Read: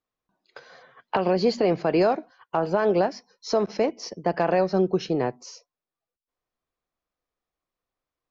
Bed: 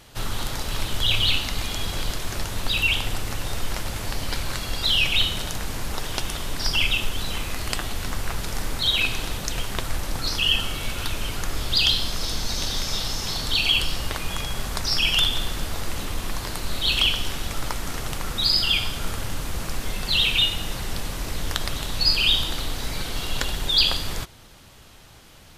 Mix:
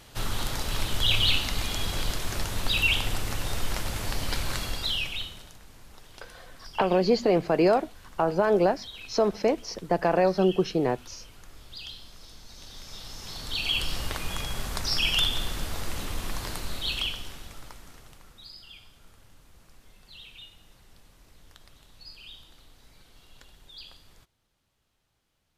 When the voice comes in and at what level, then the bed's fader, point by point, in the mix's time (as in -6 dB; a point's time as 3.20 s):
5.65 s, -0.5 dB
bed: 4.62 s -2 dB
5.59 s -21.5 dB
12.47 s -21.5 dB
13.96 s -4 dB
16.52 s -4 dB
18.57 s -27 dB